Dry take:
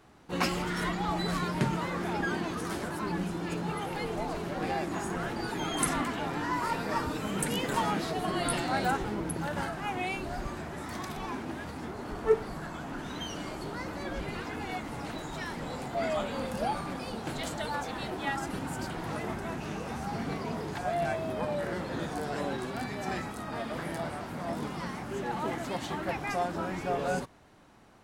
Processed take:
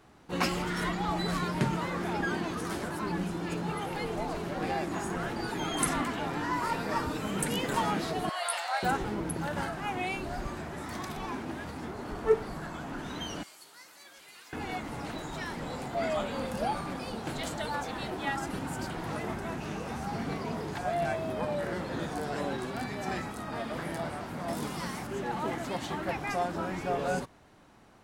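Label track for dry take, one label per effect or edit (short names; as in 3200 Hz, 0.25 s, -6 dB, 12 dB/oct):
8.290000	8.830000	steep high-pass 620 Hz
13.430000	14.530000	differentiator
24.480000	25.070000	high shelf 5000 Hz +11.5 dB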